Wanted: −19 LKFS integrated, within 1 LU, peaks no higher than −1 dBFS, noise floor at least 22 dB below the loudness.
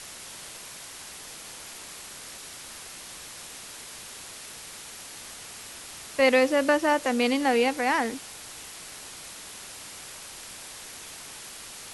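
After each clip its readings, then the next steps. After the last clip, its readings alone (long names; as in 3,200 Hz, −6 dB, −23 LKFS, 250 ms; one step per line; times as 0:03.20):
background noise floor −43 dBFS; target noise floor −52 dBFS; integrated loudness −30.0 LKFS; sample peak −9.5 dBFS; target loudness −19.0 LKFS
→ broadband denoise 9 dB, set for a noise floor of −43 dBFS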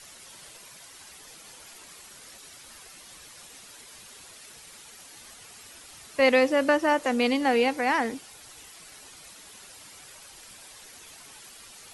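background noise floor −49 dBFS; integrated loudness −23.5 LKFS; sample peak −9.5 dBFS; target loudness −19.0 LKFS
→ level +4.5 dB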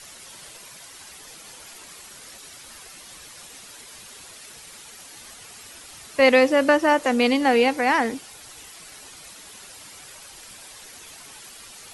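integrated loudness −19.0 LKFS; sample peak −5.0 dBFS; background noise floor −44 dBFS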